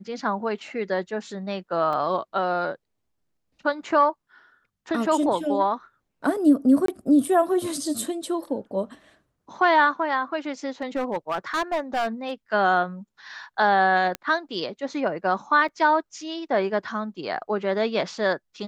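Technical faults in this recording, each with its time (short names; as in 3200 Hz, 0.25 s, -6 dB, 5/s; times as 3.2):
1.93 gap 2.8 ms
6.86–6.88 gap 23 ms
10.66–12.32 clipped -20.5 dBFS
14.15 pop -13 dBFS
15.68–15.69 gap 5.5 ms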